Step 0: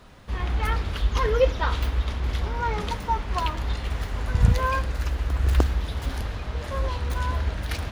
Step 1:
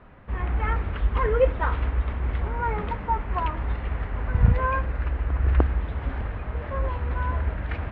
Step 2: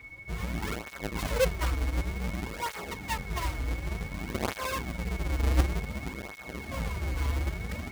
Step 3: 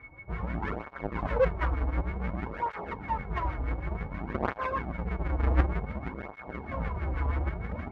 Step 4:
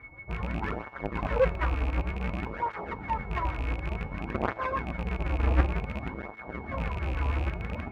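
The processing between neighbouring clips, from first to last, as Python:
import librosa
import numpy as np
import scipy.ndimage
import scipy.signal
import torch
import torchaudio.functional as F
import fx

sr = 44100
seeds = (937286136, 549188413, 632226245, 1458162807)

y1 = scipy.signal.sosfilt(scipy.signal.butter(4, 2300.0, 'lowpass', fs=sr, output='sos'), x)
y2 = fx.halfwave_hold(y1, sr)
y2 = y2 + 10.0 ** (-34.0 / 20.0) * np.sin(2.0 * np.pi * 2200.0 * np.arange(len(y2)) / sr)
y2 = fx.flanger_cancel(y2, sr, hz=0.55, depth_ms=5.6)
y2 = y2 * librosa.db_to_amplitude(-7.0)
y3 = fx.filter_lfo_lowpass(y2, sr, shape='sine', hz=6.3, low_hz=820.0, high_hz=1800.0, q=1.7)
y4 = fx.rattle_buzz(y3, sr, strikes_db=-31.0, level_db=-31.0)
y4 = fx.comb_fb(y4, sr, f0_hz=110.0, decay_s=1.5, harmonics='all', damping=0.0, mix_pct=50)
y4 = y4 * librosa.db_to_amplitude(6.5)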